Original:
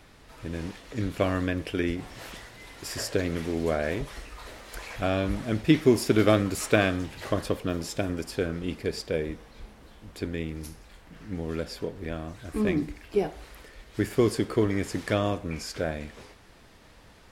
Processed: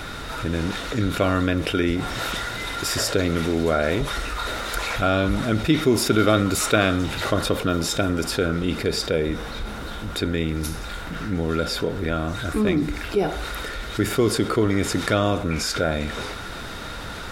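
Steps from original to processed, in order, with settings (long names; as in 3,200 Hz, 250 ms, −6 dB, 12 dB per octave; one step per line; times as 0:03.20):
hollow resonant body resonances 1,400/3,700 Hz, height 14 dB, ringing for 30 ms
dynamic equaliser 1,600 Hz, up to −5 dB, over −45 dBFS, Q 5.1
envelope flattener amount 50%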